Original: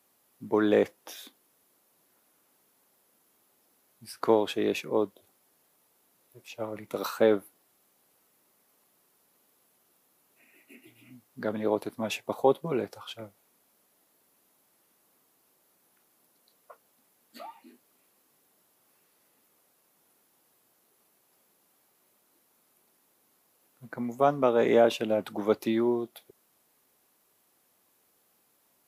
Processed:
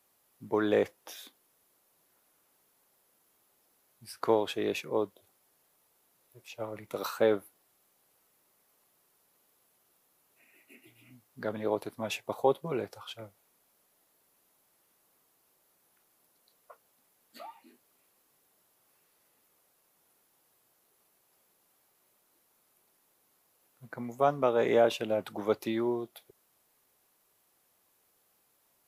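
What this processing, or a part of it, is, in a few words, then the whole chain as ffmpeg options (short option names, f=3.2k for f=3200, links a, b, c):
low shelf boost with a cut just above: -af "lowshelf=f=77:g=6.5,equalizer=f=240:t=o:w=1.1:g=-5,volume=-2dB"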